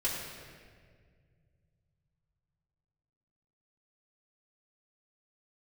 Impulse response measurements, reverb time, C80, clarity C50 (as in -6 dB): 1.9 s, 2.5 dB, 1.0 dB